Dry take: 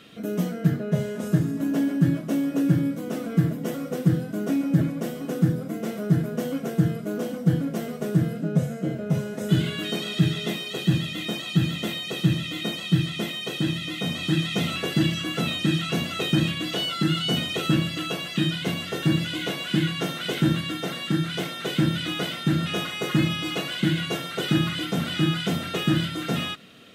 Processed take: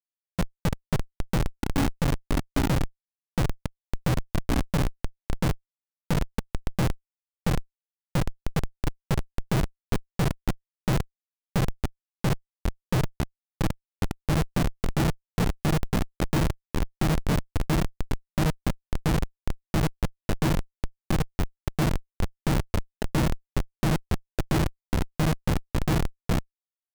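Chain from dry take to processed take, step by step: spectral gain 4.18–4.42, 550–1100 Hz +11 dB; Schmitt trigger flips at -18.5 dBFS; gain +3.5 dB

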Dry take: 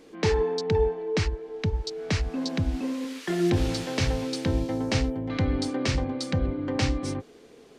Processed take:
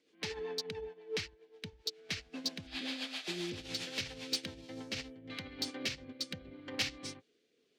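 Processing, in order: spectral repair 2.7–3.55, 560–5100 Hz after; rotary speaker horn 7.5 Hz, later 0.75 Hz, at 4.48; dynamic EQ 350 Hz, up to -3 dB, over -39 dBFS, Q 1.3; limiter -24 dBFS, peak gain reduction 9.5 dB; weighting filter D; soft clip -21.5 dBFS, distortion -19 dB; upward expander 2.5:1, over -41 dBFS; gain -1.5 dB

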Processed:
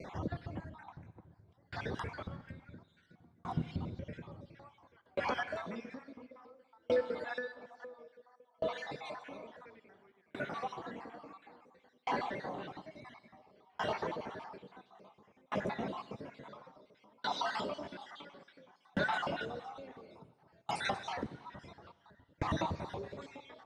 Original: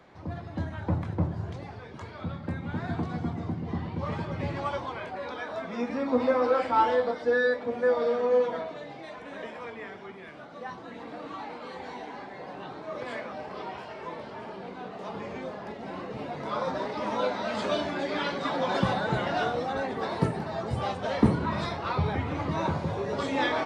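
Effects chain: random spectral dropouts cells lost 50%; 12.75–13.39 comb 1 ms, depth 97%; compressor 6:1, threshold -39 dBFS, peak gain reduction 22 dB; on a send at -12 dB: reverb RT60 4.1 s, pre-delay 45 ms; on the sum: dB-ramp tremolo decaying 0.58 Hz, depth 38 dB; gain +11.5 dB

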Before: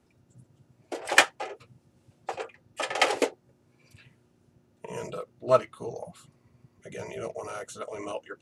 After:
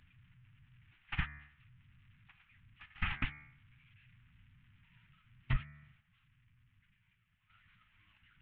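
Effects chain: delta modulation 16 kbps, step -33.5 dBFS; gate -27 dBFS, range -34 dB; 6–7.5 level quantiser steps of 16 dB; Chebyshev band-stop 130–1900 Hz, order 2; vibrato 12 Hz 39 cents; de-hum 73.22 Hz, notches 33; compressor 20:1, threshold -44 dBFS, peak gain reduction 18.5 dB; low shelf 82 Hz +11 dB; gain +10.5 dB

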